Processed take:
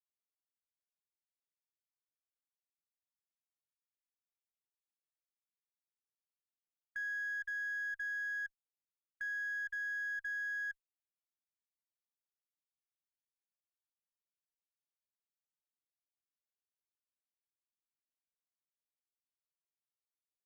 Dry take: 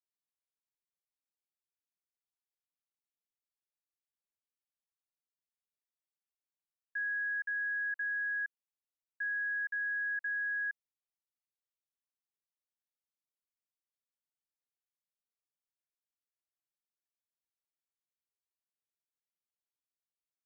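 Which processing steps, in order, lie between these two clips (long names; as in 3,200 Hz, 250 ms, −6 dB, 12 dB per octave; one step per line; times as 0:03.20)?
Chebyshev high-pass filter 1,600 Hz, order 10
noise gate with hold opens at −34 dBFS
harmonic generator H 3 −38 dB, 4 −29 dB, 5 −31 dB, 7 −35 dB, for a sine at −31.5 dBFS
level −3 dB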